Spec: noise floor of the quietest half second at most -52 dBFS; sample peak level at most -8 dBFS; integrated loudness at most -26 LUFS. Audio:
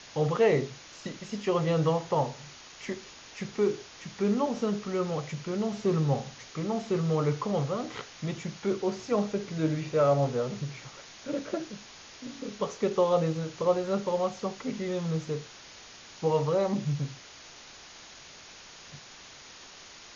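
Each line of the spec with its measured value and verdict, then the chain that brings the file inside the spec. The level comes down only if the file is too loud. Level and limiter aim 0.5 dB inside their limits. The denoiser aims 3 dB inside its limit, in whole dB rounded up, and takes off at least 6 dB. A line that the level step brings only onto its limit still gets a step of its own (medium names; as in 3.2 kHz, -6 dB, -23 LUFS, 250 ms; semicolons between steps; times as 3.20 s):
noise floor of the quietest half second -49 dBFS: fail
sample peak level -12.0 dBFS: pass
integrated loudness -30.0 LUFS: pass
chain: noise reduction 6 dB, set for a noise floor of -49 dBFS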